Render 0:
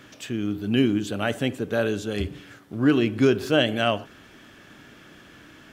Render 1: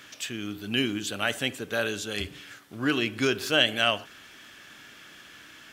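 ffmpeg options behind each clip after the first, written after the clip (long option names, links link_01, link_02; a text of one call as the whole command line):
ffmpeg -i in.wav -af "tiltshelf=frequency=970:gain=-7.5,volume=-2dB" out.wav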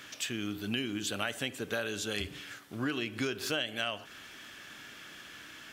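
ffmpeg -i in.wav -af "acompressor=threshold=-30dB:ratio=6" out.wav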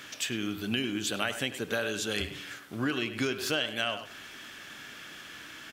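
ffmpeg -i in.wav -filter_complex "[0:a]bandreject=frequency=50:width_type=h:width=6,bandreject=frequency=100:width_type=h:width=6,asplit=2[link_01][link_02];[link_02]adelay=100,highpass=300,lowpass=3400,asoftclip=type=hard:threshold=-26dB,volume=-10dB[link_03];[link_01][link_03]amix=inputs=2:normalize=0,volume=3dB" out.wav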